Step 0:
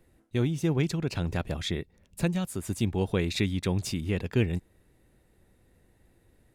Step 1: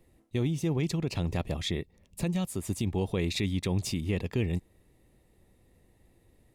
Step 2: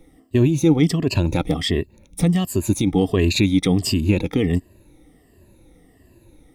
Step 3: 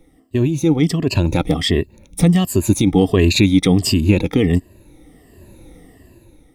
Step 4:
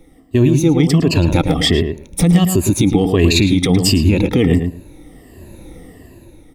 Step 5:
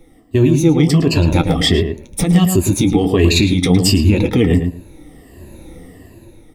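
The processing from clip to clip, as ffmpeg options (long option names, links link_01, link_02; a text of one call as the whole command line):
ffmpeg -i in.wav -af "equalizer=frequency=1500:width_type=o:width=0.21:gain=-13,alimiter=limit=-20dB:level=0:latency=1:release=30" out.wav
ffmpeg -i in.wav -af "afftfilt=real='re*pow(10,14/40*sin(2*PI*(1.4*log(max(b,1)*sr/1024/100)/log(2)-(-1.4)*(pts-256)/sr)))':imag='im*pow(10,14/40*sin(2*PI*(1.4*log(max(b,1)*sr/1024/100)/log(2)-(-1.4)*(pts-256)/sr)))':win_size=1024:overlap=0.75,equalizer=frequency=290:width=3.7:gain=8.5,volume=8dB" out.wav
ffmpeg -i in.wav -af "dynaudnorm=framelen=210:gausssize=9:maxgain=13dB,volume=-1dB" out.wav
ffmpeg -i in.wav -filter_complex "[0:a]alimiter=limit=-9.5dB:level=0:latency=1:release=120,asplit=2[link_01][link_02];[link_02]adelay=110,lowpass=frequency=2000:poles=1,volume=-6dB,asplit=2[link_03][link_04];[link_04]adelay=110,lowpass=frequency=2000:poles=1,volume=0.16,asplit=2[link_05][link_06];[link_06]adelay=110,lowpass=frequency=2000:poles=1,volume=0.16[link_07];[link_03][link_05][link_07]amix=inputs=3:normalize=0[link_08];[link_01][link_08]amix=inputs=2:normalize=0,volume=5dB" out.wav
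ffmpeg -i in.wav -af "flanger=delay=8.2:depth=6.3:regen=-43:speed=0.47:shape=triangular,volume=4dB" out.wav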